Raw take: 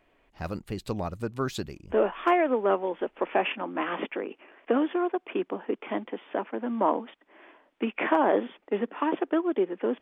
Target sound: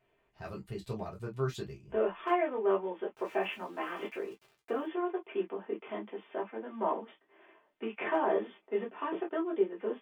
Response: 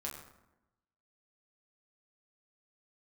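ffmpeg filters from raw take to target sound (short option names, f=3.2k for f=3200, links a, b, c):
-filter_complex "[0:a]asettb=1/sr,asplit=3[a][b][c];[a]atrim=end=3.104[d];[b]atrim=start=3.1:end=4.86,asetpts=PTS-STARTPTS,afade=t=in:d=0.004:c=qsin,afade=t=out:st=1.756:d=0.004:c=qsin,aeval=exprs='val(0)*gte(abs(val(0)),0.00501)':c=same[e];[c]atrim=start=4.856[f];[d][e]acrossfade=d=0.004:c1=hsin:c2=qsin[g];[g][f]acrossfade=d=0.004:c1=qsin:c2=hsin[h];[1:a]atrim=start_sample=2205,afade=t=out:st=0.14:d=0.01,atrim=end_sample=6615,asetrate=79380,aresample=44100[i];[h][i]afir=irnorm=-1:irlink=0,volume=-2dB"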